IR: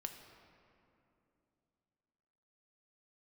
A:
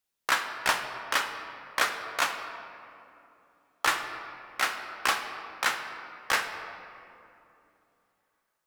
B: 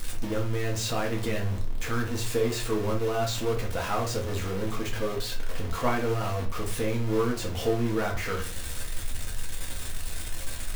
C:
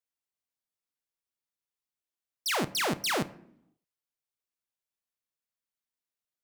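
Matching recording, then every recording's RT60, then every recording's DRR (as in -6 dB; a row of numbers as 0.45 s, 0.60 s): A; 2.9 s, 0.45 s, 0.70 s; 5.0 dB, -2.0 dB, 12.0 dB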